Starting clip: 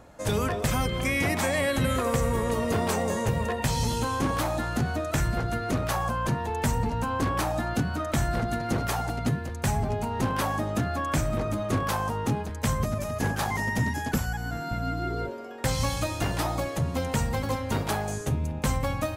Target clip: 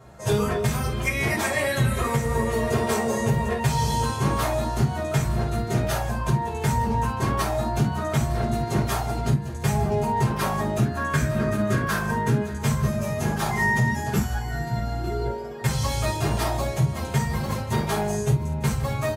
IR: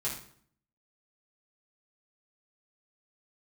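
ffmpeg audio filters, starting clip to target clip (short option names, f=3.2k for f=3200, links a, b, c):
-filter_complex "[0:a]asettb=1/sr,asplit=3[a][b][c];[a]atrim=end=5.614[d];[b]atrim=start=5.61:end=6.19,asetpts=PTS-STARTPTS,afade=t=in:d=0.004:c=qsin,afade=t=out:st=0.576:d=0.004:c=qsin,bandreject=f=1.1k:w=6.7[e];[c]atrim=start=6.186[f];[d][e]acrossfade=d=0.004:c1=hsin:c2=qsin[g];[g][f]acrossfade=d=0.004:c1=qsin:c2=hsin[h];[1:a]atrim=start_sample=2205,atrim=end_sample=3528[i];[h][i]afir=irnorm=-1:irlink=0,alimiter=limit=-12dB:level=0:latency=1:release=322,asettb=1/sr,asplit=3[j][k][l];[j]atrim=end=10.854[m];[k]atrim=start=10.85:end=12.59,asetpts=PTS-STARTPTS,afade=t=in:d=0.004:c=qsin,afade=t=out:st=1.736:d=0.004:c=qsin,equalizer=f=250:t=o:w=0.33:g=6,equalizer=f=800:t=o:w=0.33:g=-8,equalizer=f=1.6k:t=o:w=0.33:g=11[n];[l]atrim=start=12.586[o];[m][n]acrossfade=d=0.004:c1=hsin:c2=qsin[p];[p][o]acrossfade=d=0.004:c1=qsin:c2=hsin,aecho=1:1:903:0.133"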